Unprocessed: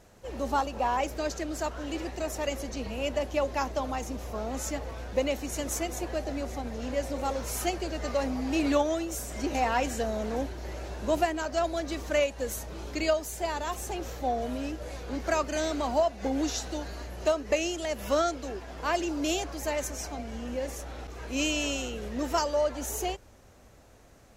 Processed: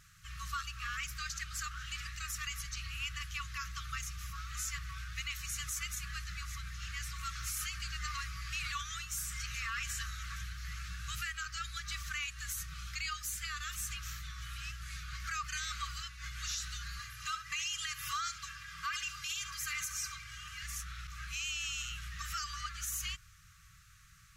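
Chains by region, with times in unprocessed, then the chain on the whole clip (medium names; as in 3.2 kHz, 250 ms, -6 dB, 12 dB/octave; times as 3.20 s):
16.99–20.63 s: high-pass 87 Hz 24 dB/octave + comb 2.5 ms, depth 64% + flutter echo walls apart 11.8 m, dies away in 0.26 s
whole clip: FFT band-reject 180–1100 Hz; bass shelf 200 Hz -5.5 dB; peak limiter -29 dBFS; trim +1 dB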